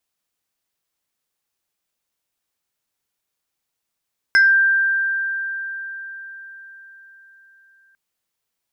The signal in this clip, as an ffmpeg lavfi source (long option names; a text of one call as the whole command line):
ffmpeg -f lavfi -i "aevalsrc='0.355*pow(10,-3*t/4.78)*sin(2*PI*1580*t+0.58*pow(10,-3*t/0.28)*sin(2*PI*2.29*1580*t))':duration=3.6:sample_rate=44100" out.wav